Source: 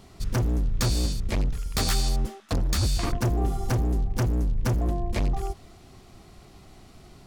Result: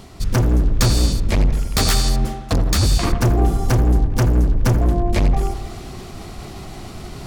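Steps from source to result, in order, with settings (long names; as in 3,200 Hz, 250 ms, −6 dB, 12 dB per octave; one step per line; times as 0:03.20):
reversed playback
upward compression, threshold −32 dBFS
reversed playback
delay with a low-pass on its return 83 ms, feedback 66%, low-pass 2,000 Hz, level −10 dB
level +8 dB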